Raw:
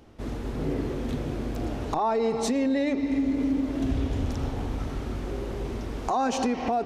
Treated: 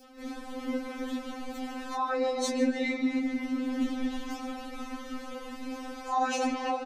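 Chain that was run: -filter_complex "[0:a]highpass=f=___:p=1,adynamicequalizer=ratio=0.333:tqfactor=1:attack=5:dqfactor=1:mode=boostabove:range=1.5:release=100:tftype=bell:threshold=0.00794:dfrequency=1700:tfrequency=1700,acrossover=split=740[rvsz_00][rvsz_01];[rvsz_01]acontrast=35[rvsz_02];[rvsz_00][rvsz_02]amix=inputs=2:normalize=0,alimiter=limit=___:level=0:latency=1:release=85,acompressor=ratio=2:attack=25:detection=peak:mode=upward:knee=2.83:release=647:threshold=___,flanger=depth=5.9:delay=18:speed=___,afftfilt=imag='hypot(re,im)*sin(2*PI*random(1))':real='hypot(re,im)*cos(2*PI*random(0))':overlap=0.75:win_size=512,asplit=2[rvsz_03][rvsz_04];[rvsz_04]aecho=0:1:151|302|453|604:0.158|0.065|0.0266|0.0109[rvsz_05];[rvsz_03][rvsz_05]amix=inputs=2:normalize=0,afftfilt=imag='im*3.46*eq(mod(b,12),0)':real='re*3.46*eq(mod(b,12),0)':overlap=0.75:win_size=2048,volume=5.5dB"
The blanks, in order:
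79, -15.5dB, -37dB, 0.43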